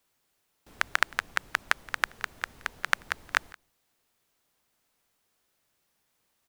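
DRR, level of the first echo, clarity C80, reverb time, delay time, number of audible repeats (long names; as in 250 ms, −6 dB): no reverb audible, −23.5 dB, no reverb audible, no reverb audible, 173 ms, 1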